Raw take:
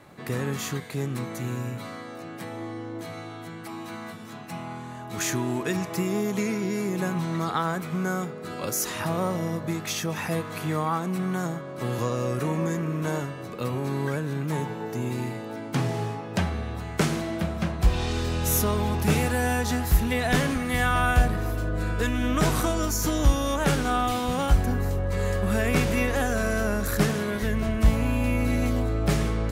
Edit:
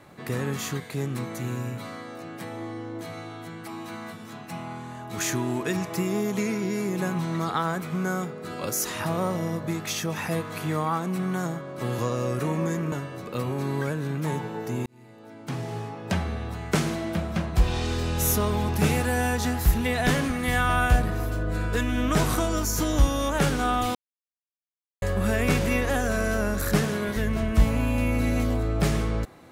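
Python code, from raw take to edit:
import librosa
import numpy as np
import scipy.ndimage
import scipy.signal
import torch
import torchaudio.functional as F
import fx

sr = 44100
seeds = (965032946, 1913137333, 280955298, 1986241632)

y = fx.edit(x, sr, fx.cut(start_s=12.92, length_s=0.26),
    fx.fade_in_span(start_s=15.12, length_s=1.4),
    fx.silence(start_s=24.21, length_s=1.07), tone=tone)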